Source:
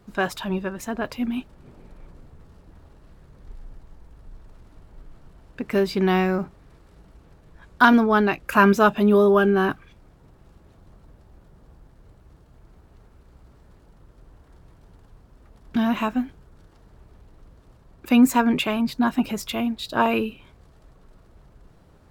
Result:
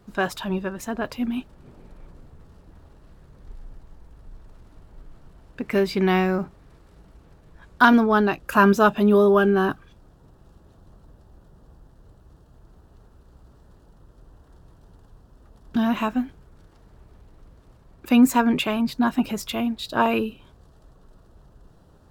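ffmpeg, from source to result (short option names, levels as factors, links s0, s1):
-af "asetnsamples=n=441:p=0,asendcmd='5.63 equalizer g 4;6.19 equalizer g -2;8.12 equalizer g -9;8.85 equalizer g -3;9.59 equalizer g -11.5;15.83 equalizer g -2;20.19 equalizer g -12.5',equalizer=f=2200:t=o:w=0.35:g=-2.5"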